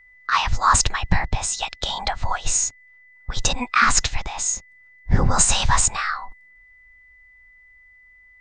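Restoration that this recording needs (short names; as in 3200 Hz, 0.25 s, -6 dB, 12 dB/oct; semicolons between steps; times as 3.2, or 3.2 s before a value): notch 2000 Hz, Q 30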